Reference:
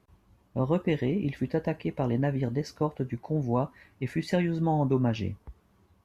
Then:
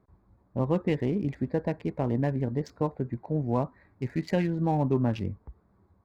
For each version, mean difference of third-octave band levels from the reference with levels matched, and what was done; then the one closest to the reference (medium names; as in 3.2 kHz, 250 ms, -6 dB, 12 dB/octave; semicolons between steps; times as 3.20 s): 2.0 dB: local Wiener filter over 15 samples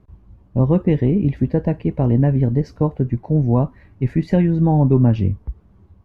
5.5 dB: tilt EQ -3.5 dB/octave; trim +3.5 dB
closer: first